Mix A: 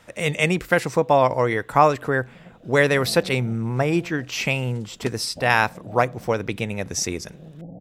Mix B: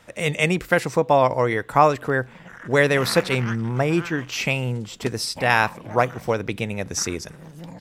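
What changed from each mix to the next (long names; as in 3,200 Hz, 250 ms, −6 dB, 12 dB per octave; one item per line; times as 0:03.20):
first sound: remove Butterworth low-pass 770 Hz 96 dB per octave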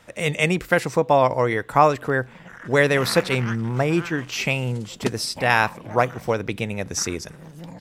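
second sound +7.0 dB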